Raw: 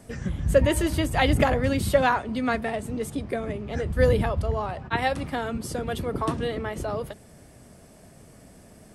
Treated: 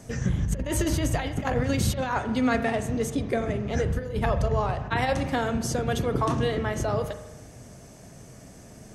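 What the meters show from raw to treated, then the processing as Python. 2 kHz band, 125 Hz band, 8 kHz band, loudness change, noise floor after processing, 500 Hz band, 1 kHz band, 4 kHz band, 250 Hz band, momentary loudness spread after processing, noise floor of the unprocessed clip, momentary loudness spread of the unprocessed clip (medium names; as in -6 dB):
-2.5 dB, +1.0 dB, +3.0 dB, -1.0 dB, -47 dBFS, -2.5 dB, -1.5 dB, -1.5 dB, +0.5 dB, 4 LU, -51 dBFS, 10 LU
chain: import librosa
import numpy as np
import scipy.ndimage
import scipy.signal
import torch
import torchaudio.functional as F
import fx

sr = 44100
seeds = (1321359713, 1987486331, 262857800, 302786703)

y = fx.graphic_eq_31(x, sr, hz=(125, 6300, 10000), db=(6, 10, -5))
y = fx.over_compress(y, sr, threshold_db=-24.0, ratio=-0.5)
y = fx.rev_spring(y, sr, rt60_s=1.1, pass_ms=(39,), chirp_ms=50, drr_db=9.5)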